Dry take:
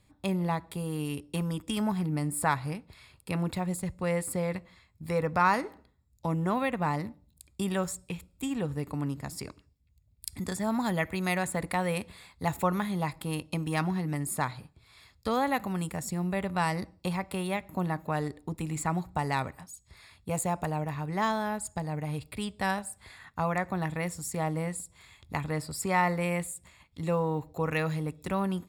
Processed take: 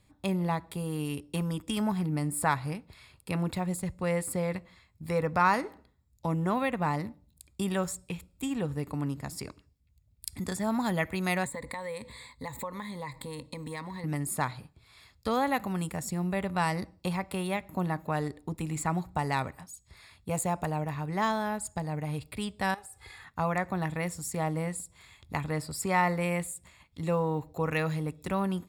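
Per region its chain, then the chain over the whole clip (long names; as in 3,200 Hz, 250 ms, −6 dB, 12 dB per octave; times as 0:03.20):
0:11.45–0:14.04: EQ curve with evenly spaced ripples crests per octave 1, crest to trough 13 dB + downward compressor 3 to 1, threshold −37 dBFS
0:22.74–0:23.24: comb filter 2.4 ms, depth 79% + downward compressor, threshold −43 dBFS
whole clip: no processing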